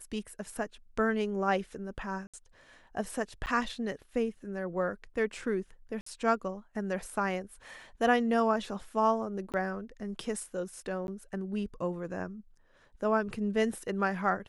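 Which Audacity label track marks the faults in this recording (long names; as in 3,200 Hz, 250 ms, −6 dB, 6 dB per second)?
2.270000	2.340000	drop-out 66 ms
3.460000	3.470000	drop-out 9.2 ms
6.010000	6.060000	drop-out 54 ms
9.520000	9.540000	drop-out 18 ms
11.070000	11.080000	drop-out 11 ms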